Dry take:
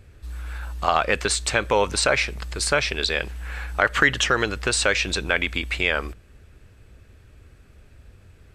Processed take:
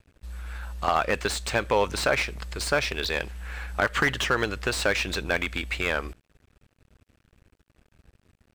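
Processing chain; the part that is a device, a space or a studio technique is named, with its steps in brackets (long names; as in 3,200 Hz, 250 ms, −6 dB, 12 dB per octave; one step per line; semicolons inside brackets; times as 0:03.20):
early transistor amplifier (dead-zone distortion −47.5 dBFS; slew-rate limiting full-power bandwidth 290 Hz)
level −2.5 dB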